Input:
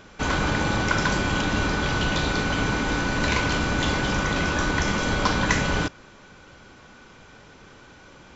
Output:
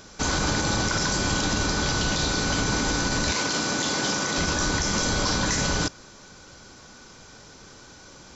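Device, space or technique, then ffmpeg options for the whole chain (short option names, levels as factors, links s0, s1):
over-bright horn tweeter: -filter_complex "[0:a]highshelf=f=3800:t=q:w=1.5:g=9,alimiter=limit=0.188:level=0:latency=1:release=36,asettb=1/sr,asplit=3[s0][s1][s2];[s0]atrim=end=3.324[s3];[s1]atrim=start=3.32:end=4.38,asetpts=PTS-STARTPTS,afade=t=in:d=0.004:c=qsin,afade=t=out:st=1.056:d=0.004:c=qsin,highpass=190[s4];[s2]atrim=start=4.376[s5];[s3][s4]acrossfade=d=0.004:c1=hsin:c2=qsin[s6];[s6][s5]acrossfade=d=0.004:c1=qsin:c2=hsin"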